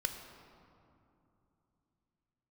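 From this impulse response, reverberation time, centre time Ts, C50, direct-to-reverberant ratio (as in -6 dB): 2.9 s, 43 ms, 6.5 dB, 5.0 dB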